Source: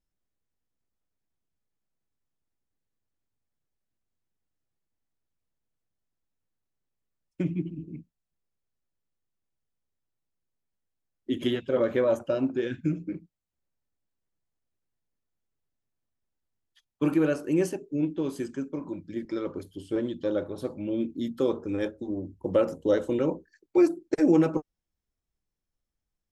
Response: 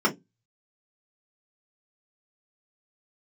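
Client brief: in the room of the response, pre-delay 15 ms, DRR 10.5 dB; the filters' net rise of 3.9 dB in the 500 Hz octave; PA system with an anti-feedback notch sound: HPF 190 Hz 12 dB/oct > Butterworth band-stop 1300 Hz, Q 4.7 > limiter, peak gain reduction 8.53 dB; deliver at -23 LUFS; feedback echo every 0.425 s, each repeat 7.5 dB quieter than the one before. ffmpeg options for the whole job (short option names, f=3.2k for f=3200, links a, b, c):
-filter_complex "[0:a]equalizer=f=500:t=o:g=5,aecho=1:1:425|850|1275|1700|2125:0.422|0.177|0.0744|0.0312|0.0131,asplit=2[a][b];[1:a]atrim=start_sample=2205,adelay=15[c];[b][c]afir=irnorm=-1:irlink=0,volume=-25dB[d];[a][d]amix=inputs=2:normalize=0,highpass=190,asuperstop=centerf=1300:order=8:qfactor=4.7,volume=4.5dB,alimiter=limit=-11.5dB:level=0:latency=1"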